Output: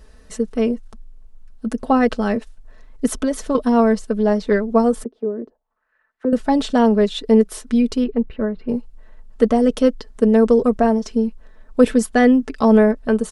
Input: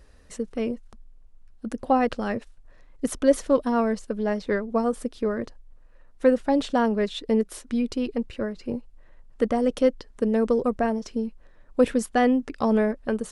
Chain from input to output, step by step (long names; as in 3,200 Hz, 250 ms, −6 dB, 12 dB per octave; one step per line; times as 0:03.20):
parametric band 2,300 Hz −2.5 dB 0.57 octaves
comb filter 4.6 ms, depth 53%
0:03.15–0:03.55: downward compressor, threshold −22 dBFS, peak gain reduction 7 dB
0:05.04–0:06.33: envelope filter 330–2,100 Hz, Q 2.9, down, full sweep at −24.5 dBFS
0:08.04–0:08.69: high-frequency loss of the air 440 metres
level +5.5 dB